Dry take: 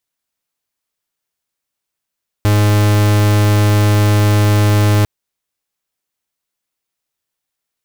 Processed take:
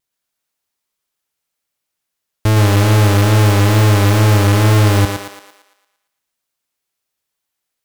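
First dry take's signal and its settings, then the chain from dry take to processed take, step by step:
pulse wave 104 Hz, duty 44% −11 dBFS 2.60 s
tape wow and flutter 70 cents
on a send: feedback echo with a high-pass in the loop 114 ms, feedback 50%, high-pass 320 Hz, level −3 dB

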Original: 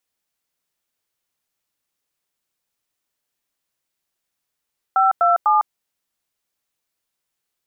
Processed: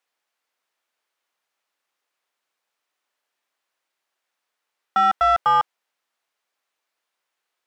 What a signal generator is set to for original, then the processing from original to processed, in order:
touch tones "527", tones 154 ms, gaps 95 ms, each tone −15 dBFS
high-pass filter 500 Hz 6 dB per octave
mid-hump overdrive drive 16 dB, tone 1,300 Hz, clips at −9.5 dBFS

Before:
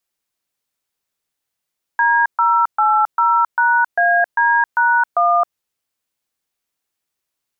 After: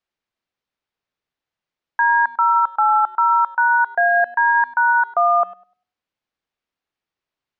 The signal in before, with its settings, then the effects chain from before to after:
touch tones "D080#AD#1", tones 268 ms, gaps 129 ms, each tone −14 dBFS
high-frequency loss of the air 190 metres
tape delay 100 ms, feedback 28%, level −16 dB, low-pass 1,000 Hz

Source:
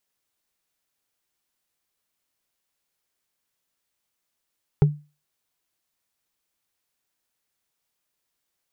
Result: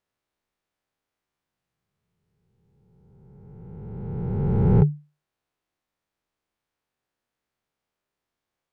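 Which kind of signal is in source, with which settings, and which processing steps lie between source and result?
struck wood, lowest mode 148 Hz, decay 0.30 s, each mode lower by 8 dB, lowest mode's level −9 dB
peak hold with a rise ahead of every peak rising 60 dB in 2.52 s
low-pass filter 1,300 Hz 6 dB per octave

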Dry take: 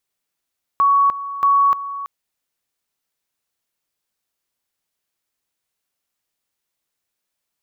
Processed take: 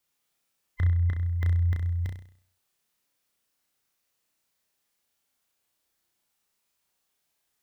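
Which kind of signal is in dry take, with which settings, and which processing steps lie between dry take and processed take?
tone at two levels in turn 1,120 Hz −11 dBFS, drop 14 dB, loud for 0.30 s, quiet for 0.33 s, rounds 2
neighbouring bands swapped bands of 1,000 Hz
brickwall limiter −20.5 dBFS
flutter between parallel walls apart 5.6 metres, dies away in 0.54 s

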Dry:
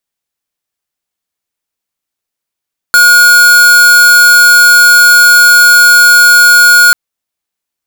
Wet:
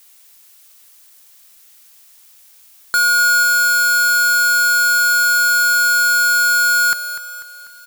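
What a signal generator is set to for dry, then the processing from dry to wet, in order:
tone square 1,440 Hz −3.5 dBFS 3.99 s
brickwall limiter −13.5 dBFS
background noise blue −48 dBFS
repeating echo 246 ms, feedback 50%, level −11 dB

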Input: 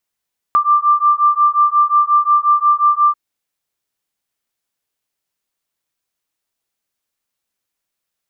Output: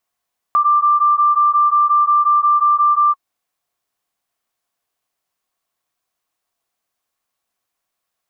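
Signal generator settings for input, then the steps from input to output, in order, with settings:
two tones that beat 1,180 Hz, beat 5.6 Hz, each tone −13 dBFS 2.59 s
parametric band 950 Hz +4.5 dB 1.9 octaves
brickwall limiter −11.5 dBFS
hollow resonant body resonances 710/1,100 Hz, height 8 dB

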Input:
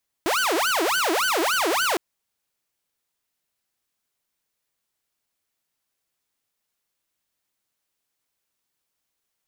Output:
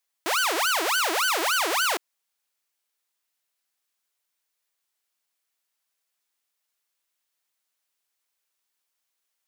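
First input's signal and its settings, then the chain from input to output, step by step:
siren wail 317–1,530 Hz 3.5 per second saw −17.5 dBFS 1.71 s
high-pass filter 780 Hz 6 dB per octave

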